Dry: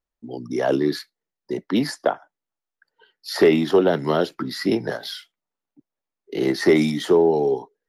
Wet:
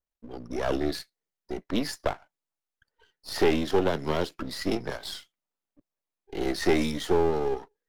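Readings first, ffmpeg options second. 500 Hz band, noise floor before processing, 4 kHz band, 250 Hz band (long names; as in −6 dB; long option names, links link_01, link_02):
−8.0 dB, below −85 dBFS, −4.5 dB, −8.0 dB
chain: -af "aeval=exprs='if(lt(val(0),0),0.251*val(0),val(0))':channel_layout=same,adynamicequalizer=threshold=0.0141:dfrequency=2500:dqfactor=0.7:tfrequency=2500:tqfactor=0.7:attack=5:release=100:ratio=0.375:range=2:mode=boostabove:tftype=highshelf,volume=-4dB"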